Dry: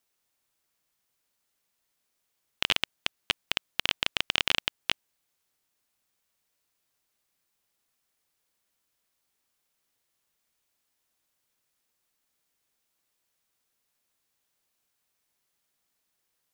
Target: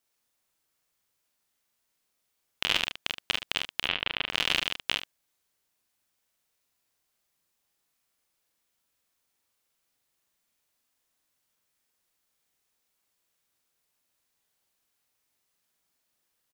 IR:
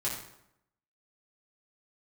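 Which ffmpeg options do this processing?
-filter_complex "[0:a]asplit=3[a][b][c];[a]afade=t=out:st=3.82:d=0.02[d];[b]lowpass=f=3.4k:w=0.5412,lowpass=f=3.4k:w=1.3066,afade=t=in:st=3.82:d=0.02,afade=t=out:st=4.29:d=0.02[e];[c]afade=t=in:st=4.29:d=0.02[f];[d][e][f]amix=inputs=3:normalize=0,asplit=2[g][h];[h]adelay=45,volume=-2.5dB[i];[g][i]amix=inputs=2:normalize=0,aecho=1:1:33|74:0.224|0.282,volume=-2dB"

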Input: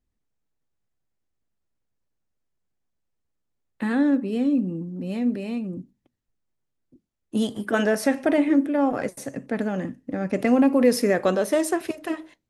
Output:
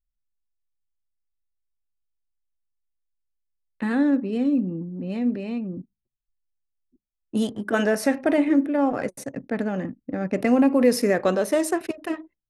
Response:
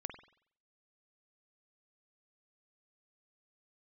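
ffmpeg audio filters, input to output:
-af "anlmdn=0.398,bandreject=f=3.3k:w=16"

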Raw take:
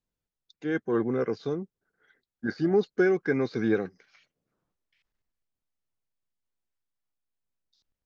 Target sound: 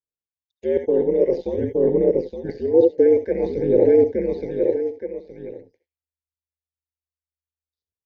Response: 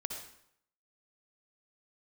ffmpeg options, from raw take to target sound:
-filter_complex "[0:a]agate=range=-36dB:threshold=-52dB:ratio=16:detection=peak,asplit=2[a][b];[1:a]atrim=start_sample=2205,atrim=end_sample=3969[c];[b][c]afir=irnorm=-1:irlink=0,volume=0.5dB[d];[a][d]amix=inputs=2:normalize=0,acrossover=split=2600[e][f];[f]acompressor=threshold=-51dB:ratio=4:attack=1:release=60[g];[e][g]amix=inputs=2:normalize=0,aecho=1:1:870|1740:0.282|0.0507,areverse,acompressor=threshold=-32dB:ratio=6,areverse,asuperstop=centerf=1300:order=8:qfactor=1.6,aphaser=in_gain=1:out_gain=1:delay=2.5:decay=0.47:speed=0.51:type=sinusoidal,aeval=exprs='val(0)*sin(2*PI*79*n/s)':c=same,equalizer=f=460:w=2.2:g=13,volume=8.5dB"

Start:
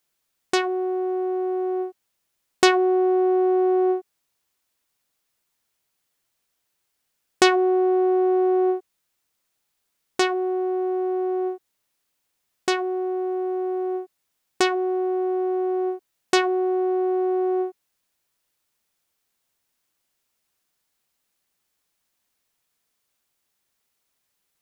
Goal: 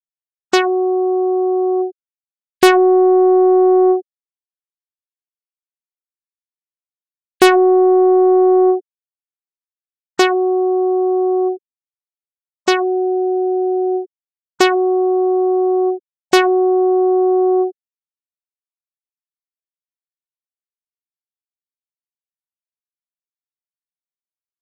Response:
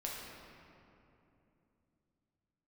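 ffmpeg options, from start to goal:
-af "afftfilt=real='re*gte(hypot(re,im),0.0501)':imag='im*gte(hypot(re,im),0.0501)':win_size=1024:overlap=0.75,aeval=exprs='0.794*sin(PI/2*1.78*val(0)/0.794)':c=same"

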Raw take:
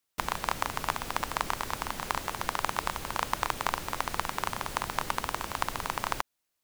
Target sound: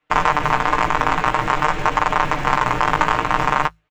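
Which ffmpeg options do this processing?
-filter_complex "[0:a]lowpass=f=2.7k:w=0.5412,lowpass=f=2.7k:w=1.3066,bandreject=f=53.89:t=h:w=4,bandreject=f=107.78:t=h:w=4,bandreject=f=161.67:t=h:w=4,atempo=1.7,aecho=1:1:6.6:0.83,aresample=16000,acrusher=bits=5:mode=log:mix=0:aa=0.000001,aresample=44100,flanger=delay=9.9:depth=9.5:regen=-21:speed=0.5:shape=triangular,acrossover=split=180[a][b];[a]acrusher=samples=32:mix=1:aa=0.000001[c];[c][b]amix=inputs=2:normalize=0,alimiter=level_in=20.5dB:limit=-1dB:release=50:level=0:latency=1,volume=-1.5dB"

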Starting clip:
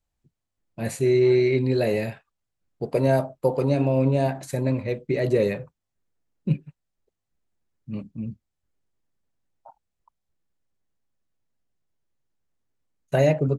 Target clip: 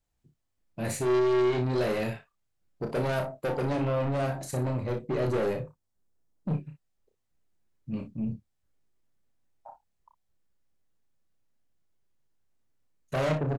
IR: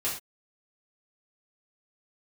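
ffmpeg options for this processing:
-filter_complex "[0:a]asettb=1/sr,asplit=3[a][b][c];[a]atrim=end=4.264[d];[b]atrim=start=4.26:end=6.58,asetpts=PTS-STARTPTS,afade=t=in:d=0.004:c=qsin,afade=t=out:st=2.316:d=0.004:c=qsin,equalizer=f=2.3k:t=o:w=1.6:g=-6[e];[c]atrim=start=6.576[f];[d][e]acrossfade=d=0.004:c1=hsin:c2=qsin[g];[g][f]acrossfade=d=0.004:c1=qsin:c2=hsin,aeval=exprs='(tanh(20*val(0)+0.15)-tanh(0.15))/20':c=same,aecho=1:1:32|59:0.501|0.251"

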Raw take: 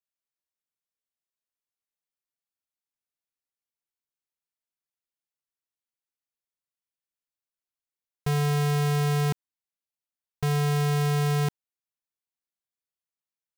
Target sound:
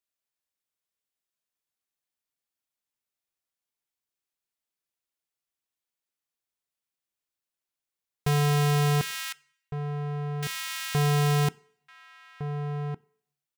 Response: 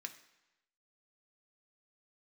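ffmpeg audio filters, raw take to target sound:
-filter_complex "[0:a]asettb=1/sr,asplit=3[a][b][c];[a]atrim=end=9.014[d];[b]atrim=start=9.01:end=10.95,asetpts=PTS-STARTPTS,afade=t=in:d=0.004:c=qsin,afade=t=out:st=1.936:d=0.004:c=qsin,highpass=f=1.5k:w=0.5412,highpass=f=1.5k:w=1.3066[e];[c]atrim=start=10.946[f];[d][e]acrossfade=d=0.004:c1=hsin:c2=qsin[g];[g][f]acrossfade=d=0.004:c1=qsin:c2=hsin,asplit=2[h][i];[i]adelay=1458,volume=-8dB,highshelf=f=4k:g=-32.8[j];[h][j]amix=inputs=2:normalize=0,asplit=2[k][l];[1:a]atrim=start_sample=2205,asetrate=61740,aresample=44100[m];[l][m]afir=irnorm=-1:irlink=0,volume=-4dB[n];[k][n]amix=inputs=2:normalize=0,volume=1dB"

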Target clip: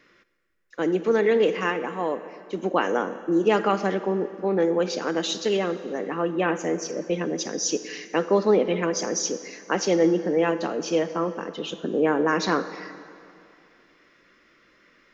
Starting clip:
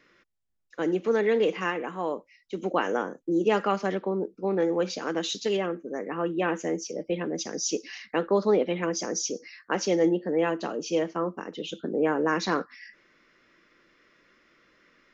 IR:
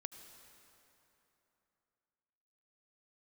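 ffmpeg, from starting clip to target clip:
-filter_complex "[0:a]asplit=2[a][b];[1:a]atrim=start_sample=2205,asetrate=57330,aresample=44100[c];[b][c]afir=irnorm=-1:irlink=0,volume=8dB[d];[a][d]amix=inputs=2:normalize=0,volume=-3.5dB"

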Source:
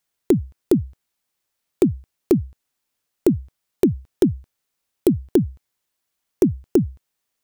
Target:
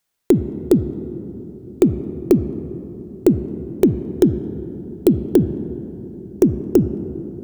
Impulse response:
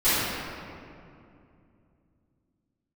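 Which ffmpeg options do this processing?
-filter_complex "[0:a]asplit=2[a][b];[b]highshelf=f=2k:g=-7[c];[1:a]atrim=start_sample=2205,asetrate=29988,aresample=44100,lowpass=5k[d];[c][d]afir=irnorm=-1:irlink=0,volume=-30dB[e];[a][e]amix=inputs=2:normalize=0,volume=2.5dB"

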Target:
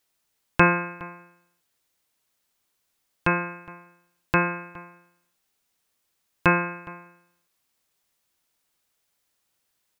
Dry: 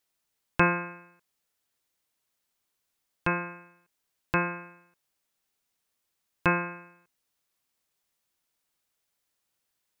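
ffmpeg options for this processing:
-filter_complex "[0:a]asplit=2[a][b];[b]adelay=414,volume=-20dB,highshelf=f=4k:g=-9.32[c];[a][c]amix=inputs=2:normalize=0,volume=5dB"

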